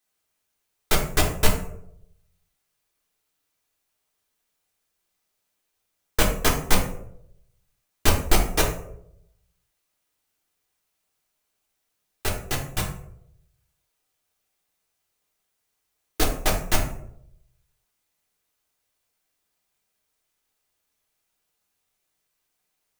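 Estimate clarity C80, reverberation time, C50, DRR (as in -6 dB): 10.0 dB, 0.75 s, 7.0 dB, -1.0 dB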